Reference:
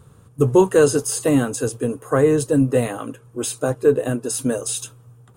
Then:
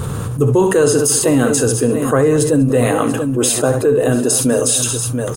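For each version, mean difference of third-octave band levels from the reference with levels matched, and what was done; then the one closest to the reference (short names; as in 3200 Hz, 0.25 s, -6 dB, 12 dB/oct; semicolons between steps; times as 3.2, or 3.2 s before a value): 9.0 dB: on a send: tapped delay 50/66/196/687 ms -19.5/-12.5/-18.5/-19 dB; on the sum: fast leveller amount 70%; gain -1 dB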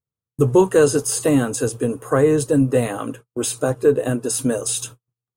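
1.5 dB: in parallel at -1.5 dB: compressor, threshold -25 dBFS, peak gain reduction 15.5 dB; on the sum: gate -34 dBFS, range -47 dB; gain -1.5 dB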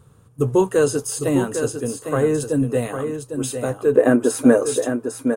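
5.5 dB: spectral gain 3.95–4.74, 210–2500 Hz +12 dB; on a send: echo 0.803 s -7.5 dB; on the sum: gain -3 dB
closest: second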